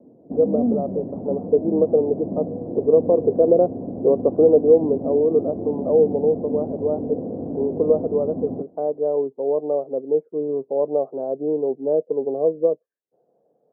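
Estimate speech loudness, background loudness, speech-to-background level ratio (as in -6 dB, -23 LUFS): -21.5 LUFS, -29.0 LUFS, 7.5 dB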